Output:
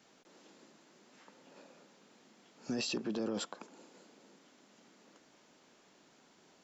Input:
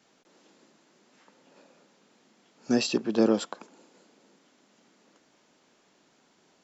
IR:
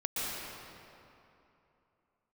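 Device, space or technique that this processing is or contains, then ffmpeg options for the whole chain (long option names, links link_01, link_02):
stacked limiters: -af "alimiter=limit=-16.5dB:level=0:latency=1:release=43,alimiter=limit=-23.5dB:level=0:latency=1:release=12,alimiter=level_in=3.5dB:limit=-24dB:level=0:latency=1:release=301,volume=-3.5dB"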